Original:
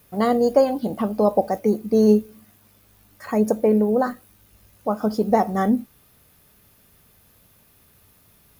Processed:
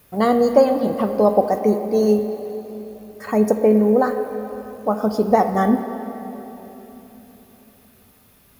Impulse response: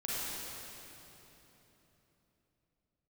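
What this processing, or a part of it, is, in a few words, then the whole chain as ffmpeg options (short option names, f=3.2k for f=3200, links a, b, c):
filtered reverb send: -filter_complex "[0:a]asettb=1/sr,asplit=3[a][b][c];[a]atrim=end=1.734[d];[b]atrim=start=1.73:end=2.19,asetpts=PTS-STARTPTS,afade=t=in:d=0.004:c=qsin,afade=t=out:st=0.456:d=0.004:c=qsin,lowshelf=f=470:g=-5.5[e];[c]atrim=start=2.186[f];[d][e]acrossfade=d=0.004:c1=hsin:c2=qsin[g];[g][f]acrossfade=d=0.004:c1=qsin:c2=hsin,asplit=2[h][i];[i]highpass=240,lowpass=4.1k[j];[1:a]atrim=start_sample=2205[k];[j][k]afir=irnorm=-1:irlink=0,volume=-10.5dB[l];[h][l]amix=inputs=2:normalize=0,volume=1.5dB"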